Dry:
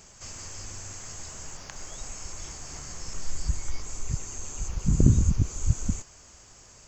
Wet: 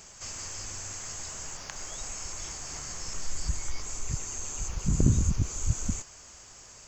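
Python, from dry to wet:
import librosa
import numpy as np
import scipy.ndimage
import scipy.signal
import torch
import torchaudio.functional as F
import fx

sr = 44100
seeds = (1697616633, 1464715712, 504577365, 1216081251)

p1 = fx.low_shelf(x, sr, hz=480.0, db=-5.5)
p2 = 10.0 ** (-26.0 / 20.0) * np.tanh(p1 / 10.0 ** (-26.0 / 20.0))
y = p1 + (p2 * librosa.db_to_amplitude(-8.0))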